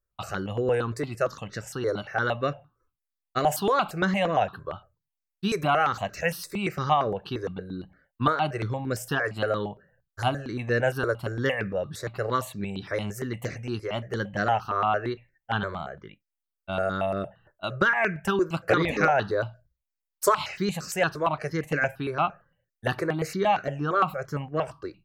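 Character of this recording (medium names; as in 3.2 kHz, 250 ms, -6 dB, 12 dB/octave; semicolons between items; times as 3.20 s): notches that jump at a steady rate 8.7 Hz 780–3200 Hz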